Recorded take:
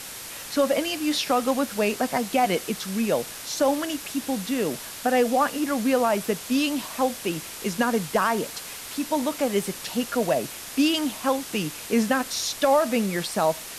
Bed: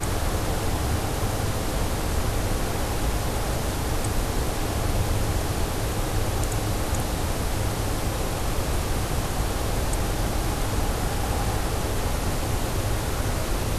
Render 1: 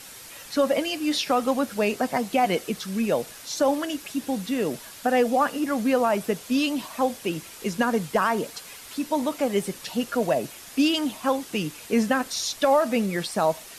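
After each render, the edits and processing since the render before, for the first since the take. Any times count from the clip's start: denoiser 7 dB, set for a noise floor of -38 dBFS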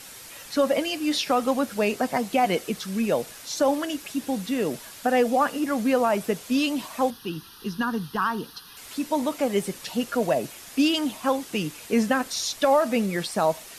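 7.1–8.77 fixed phaser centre 2200 Hz, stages 6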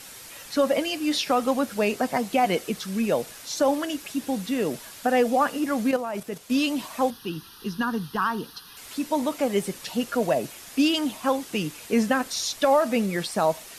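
5.91–6.5 level quantiser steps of 10 dB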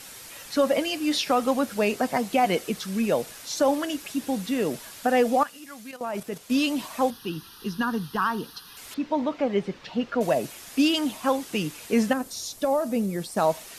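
5.43–6.01 passive tone stack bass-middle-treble 5-5-5; 8.94–10.21 air absorption 220 m; 12.13–13.37 bell 2200 Hz -11.5 dB 2.9 oct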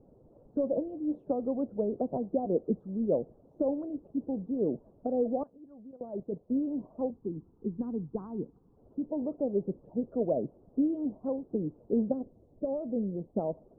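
harmonic-percussive split harmonic -6 dB; inverse Chebyshev low-pass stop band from 1900 Hz, stop band 60 dB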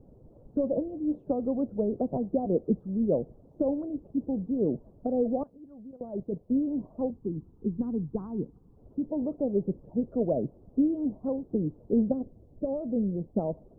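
low shelf 180 Hz +10.5 dB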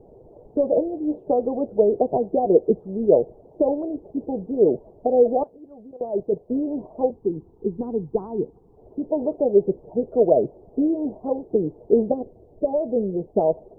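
band shelf 580 Hz +13 dB; notch 540 Hz, Q 12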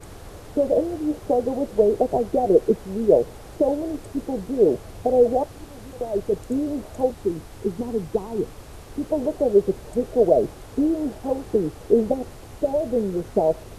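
add bed -16 dB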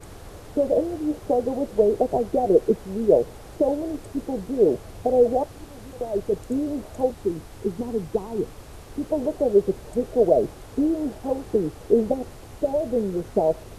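gain -1 dB

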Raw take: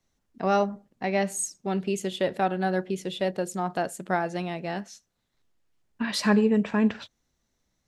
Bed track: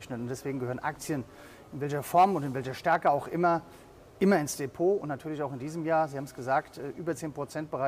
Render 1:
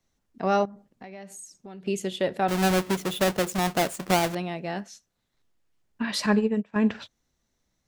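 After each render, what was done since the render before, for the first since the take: 0.65–1.86 compressor 4:1, threshold -42 dBFS; 2.48–4.35 half-waves squared off; 6.26–6.76 upward expander 2.5:1, over -34 dBFS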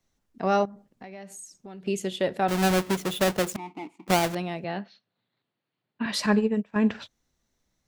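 3.56–4.08 vowel filter u; 4.64–6.06 Chebyshev band-pass 110–4400 Hz, order 5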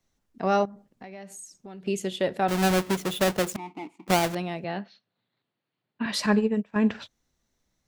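nothing audible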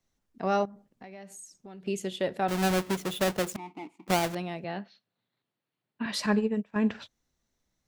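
gain -3.5 dB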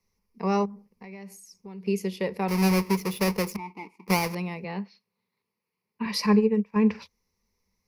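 ripple EQ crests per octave 0.85, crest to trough 14 dB

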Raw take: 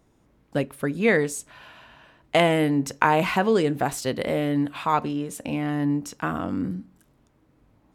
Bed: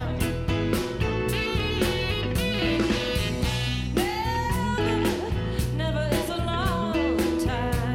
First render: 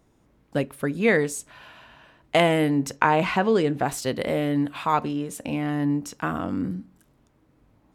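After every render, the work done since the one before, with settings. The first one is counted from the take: 2.96–3.88 air absorption 52 m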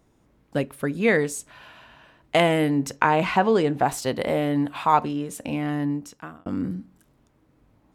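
3.35–5.05 bell 840 Hz +5.5 dB; 5.73–6.46 fade out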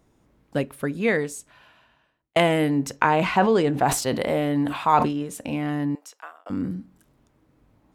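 0.75–2.36 fade out; 3.04–5.23 sustainer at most 71 dB/s; 5.95–6.5 HPF 560 Hz 24 dB/oct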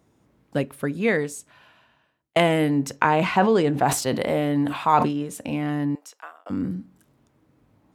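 HPF 87 Hz; low shelf 140 Hz +3.5 dB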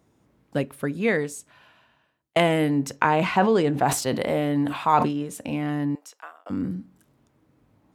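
gain -1 dB

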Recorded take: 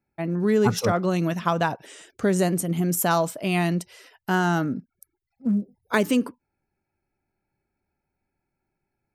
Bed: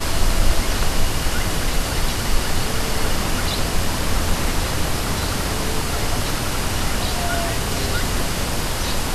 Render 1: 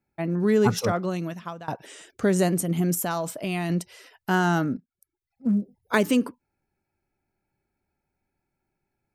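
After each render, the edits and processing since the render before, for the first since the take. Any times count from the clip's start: 0.64–1.68 fade out, to -22.5 dB; 2.94–3.7 compressor 3:1, threshold -25 dBFS; 4.77–5.47 fade in quadratic, from -14.5 dB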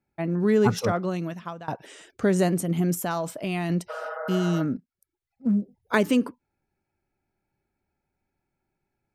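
3.92–4.58 spectral repair 470–2100 Hz after; high shelf 5700 Hz -6 dB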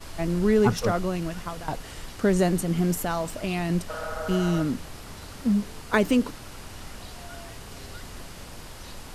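add bed -19 dB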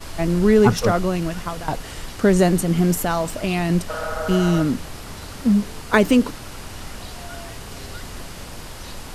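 gain +6 dB

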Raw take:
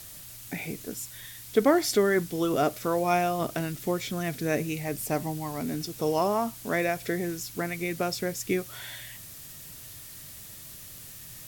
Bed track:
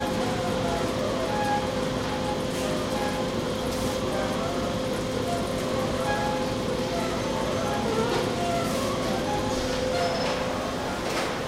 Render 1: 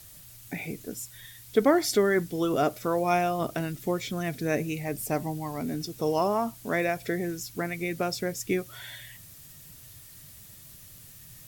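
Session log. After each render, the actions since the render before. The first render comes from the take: denoiser 6 dB, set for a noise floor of -45 dBFS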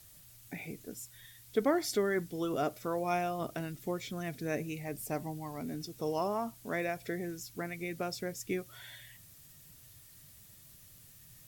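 gain -7.5 dB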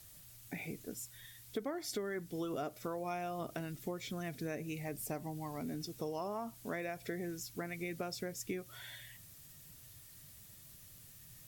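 compressor 6:1, threshold -36 dBFS, peak gain reduction 12.5 dB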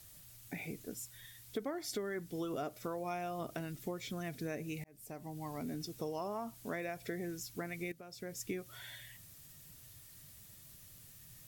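4.84–5.48 fade in; 7.92–8.36 fade in quadratic, from -14 dB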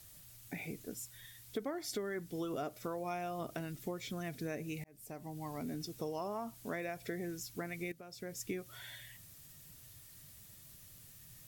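nothing audible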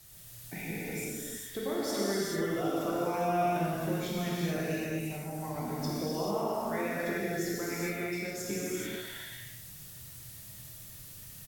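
on a send: feedback echo 0.108 s, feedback 52%, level -13 dB; on the sum: non-linear reverb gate 0.47 s flat, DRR -7.5 dB

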